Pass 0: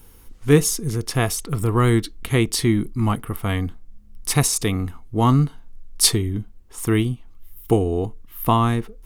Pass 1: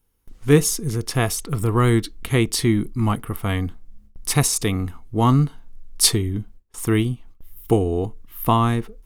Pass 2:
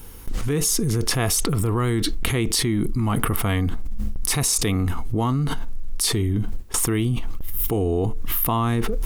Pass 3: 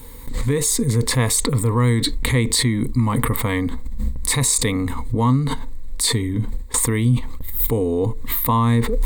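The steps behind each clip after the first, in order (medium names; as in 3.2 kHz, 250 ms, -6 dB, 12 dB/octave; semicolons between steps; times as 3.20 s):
gate with hold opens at -34 dBFS
level flattener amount 100%; trim -11.5 dB
rippled EQ curve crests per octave 1, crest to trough 12 dB; trim +1 dB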